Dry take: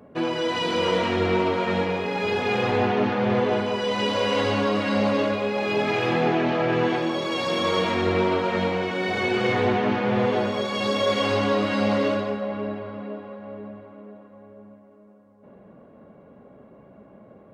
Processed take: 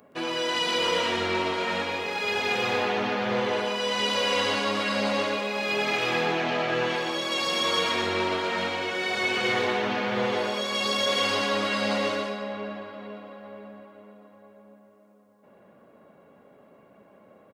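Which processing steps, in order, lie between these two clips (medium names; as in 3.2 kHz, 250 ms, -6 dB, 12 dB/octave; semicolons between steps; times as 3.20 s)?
tilt EQ +3 dB/octave; on a send: delay 121 ms -5.5 dB; on the sum: trim -3 dB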